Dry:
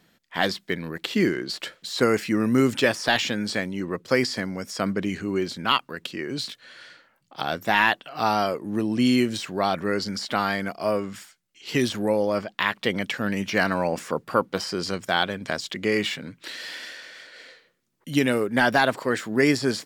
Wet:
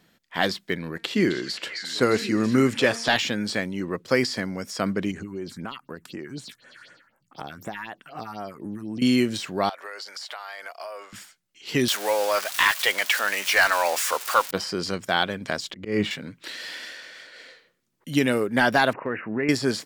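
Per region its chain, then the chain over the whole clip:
0.77–3.14 LPF 12000 Hz + de-hum 229.5 Hz, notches 34 + delay with a stepping band-pass 0.264 s, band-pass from 5200 Hz, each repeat -1.4 oct, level -3 dB
5.11–9.02 compressor 4:1, threshold -30 dBFS + phaser stages 4, 4 Hz, lowest notch 480–4500 Hz
9.69–11.13 HPF 600 Hz 24 dB/oct + compressor 12:1, threshold -32 dBFS
11.88–14.51 switching spikes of -23.5 dBFS + HPF 670 Hz + overdrive pedal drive 14 dB, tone 5100 Hz, clips at -6.5 dBFS
15.7–16.11 tilt -2.5 dB/oct + auto swell 0.169 s
18.93–19.49 brick-wall FIR low-pass 2900 Hz + compressor 2.5:1, threshold -24 dBFS
whole clip: dry

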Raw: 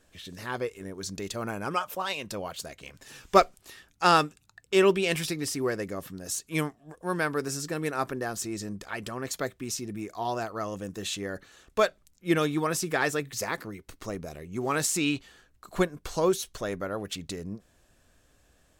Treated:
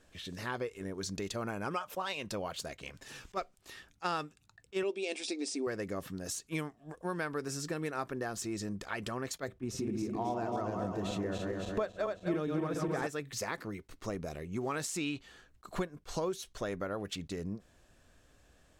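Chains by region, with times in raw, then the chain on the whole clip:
4.83–5.67 brick-wall FIR band-pass 210–9700 Hz + band shelf 1400 Hz -10.5 dB 1.2 oct + notch 3000 Hz, Q 9.7
9.48–13.07 regenerating reverse delay 0.136 s, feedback 73%, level -4 dB + tilt shelf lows +6.5 dB, about 1300 Hz
whole clip: compressor 4:1, threshold -33 dBFS; high shelf 10000 Hz -9.5 dB; attack slew limiter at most 590 dB/s

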